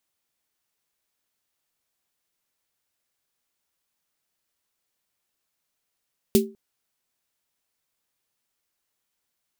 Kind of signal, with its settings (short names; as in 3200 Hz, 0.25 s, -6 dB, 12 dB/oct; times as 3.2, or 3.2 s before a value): snare drum length 0.20 s, tones 220 Hz, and 390 Hz, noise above 2700 Hz, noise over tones -7 dB, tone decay 0.30 s, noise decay 0.14 s